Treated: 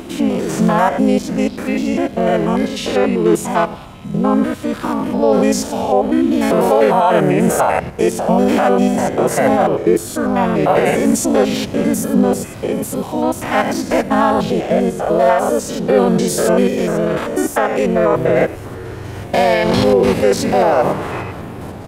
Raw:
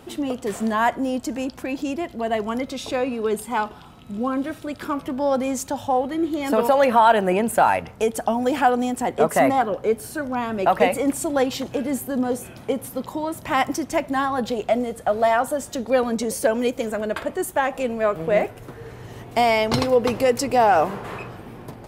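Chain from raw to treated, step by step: stepped spectrum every 0.1 s; limiter -16 dBFS, peak gain reduction 9.5 dB; harmoniser -4 st 0 dB; gain +8.5 dB

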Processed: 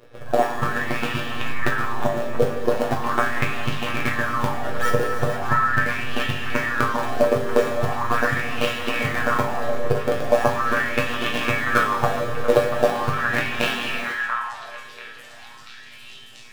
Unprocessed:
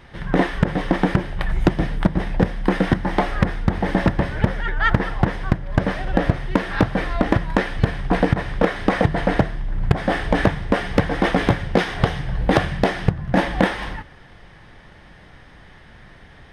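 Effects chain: robotiser 119 Hz; in parallel at -3 dB: decimation with a swept rate 27×, swing 160% 1.8 Hz; on the sum: low shelf 180 Hz -8 dB; notch 2000 Hz, Q 12; resonator bank G2 sus4, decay 0.29 s; on a send: delay with a stepping band-pass 0.687 s, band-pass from 1400 Hz, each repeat 0.7 oct, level -2 dB; on the sum: non-linear reverb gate 0.5 s flat, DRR 3 dB; LFO bell 0.4 Hz 470–2900 Hz +15 dB; gain +6.5 dB

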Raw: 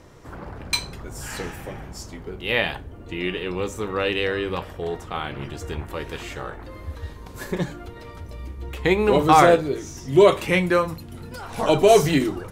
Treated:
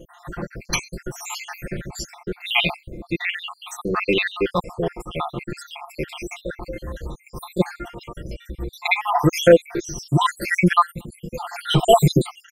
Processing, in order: random spectral dropouts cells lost 73%; comb 5.7 ms, depth 93%; maximiser +7 dB; gain -1 dB

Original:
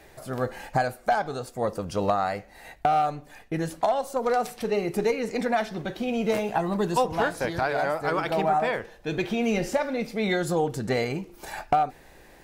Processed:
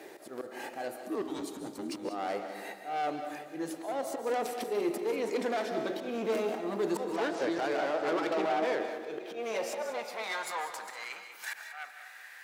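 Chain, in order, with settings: 7.05–8.8 LPF 6700 Hz 24 dB/oct; in parallel at +1 dB: compressor, threshold -35 dBFS, peak gain reduction 16.5 dB; on the sum: auto swell 0.211 s; one-sided clip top -29.5 dBFS; 1–2.05 frequency shift -410 Hz; soft clip -22.5 dBFS, distortion -13 dB; high-pass sweep 330 Hz -> 1600 Hz, 8.71–11.34; on a send at -8 dB: reverb RT60 0.90 s, pre-delay 0.11 s; on the sum: lo-fi delay 0.191 s, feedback 55%, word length 10-bit, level -13 dB; gain -5.5 dB

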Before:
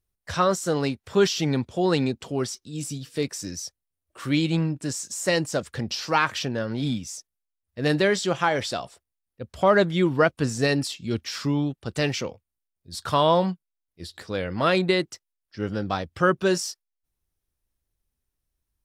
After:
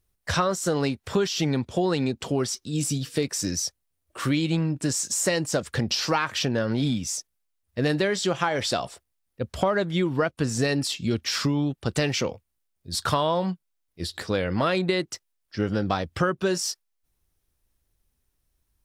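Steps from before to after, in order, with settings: compressor 6:1, threshold -28 dBFS, peak gain reduction 14 dB; gain +7 dB

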